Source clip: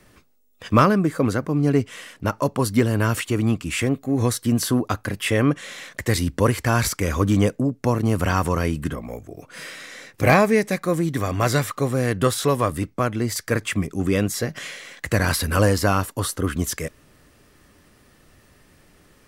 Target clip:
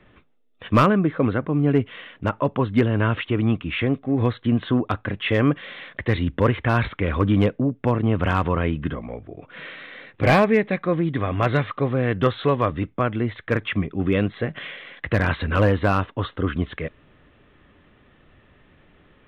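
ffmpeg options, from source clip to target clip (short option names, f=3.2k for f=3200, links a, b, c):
-af "aresample=8000,aresample=44100,volume=9dB,asoftclip=hard,volume=-9dB"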